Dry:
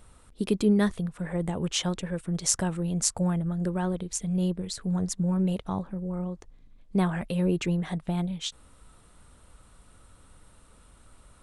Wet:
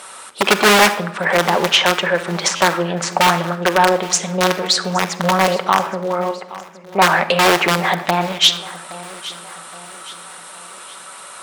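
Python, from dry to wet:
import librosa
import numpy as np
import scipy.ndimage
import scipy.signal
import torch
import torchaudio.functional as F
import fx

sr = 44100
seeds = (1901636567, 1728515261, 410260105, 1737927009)

p1 = fx.cheby_ripple(x, sr, hz=2900.0, ripple_db=9, at=(6.31, 7.02))
p2 = fx.env_lowpass_down(p1, sr, base_hz=1600.0, full_db=-24.0)
p3 = (np.mod(10.0 ** (20.0 / 20.0) * p2 + 1.0, 2.0) - 1.0) / 10.0 ** (20.0 / 20.0)
p4 = p2 + (p3 * 10.0 ** (-3.0 / 20.0))
p5 = scipy.signal.sosfilt(scipy.signal.butter(2, 760.0, 'highpass', fs=sr, output='sos'), p4)
p6 = fx.room_shoebox(p5, sr, seeds[0], volume_m3=3400.0, walls='furnished', distance_m=1.1)
p7 = fx.fold_sine(p6, sr, drive_db=17, ceiling_db=-4.0)
p8 = p7 + fx.echo_feedback(p7, sr, ms=819, feedback_pct=45, wet_db=-18.0, dry=0)
p9 = fx.buffer_glitch(p8, sr, at_s=(2.56,), block=512, repeats=3)
y = fx.doppler_dist(p9, sr, depth_ms=0.18)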